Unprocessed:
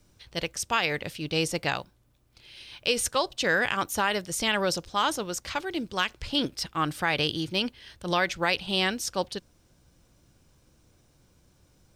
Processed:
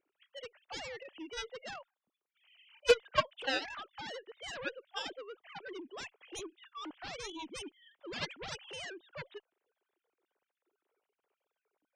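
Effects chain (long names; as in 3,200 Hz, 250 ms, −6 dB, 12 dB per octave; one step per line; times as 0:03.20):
three sine waves on the formant tracks
harmonic generator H 4 −35 dB, 7 −13 dB, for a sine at −7.5 dBFS
level −6 dB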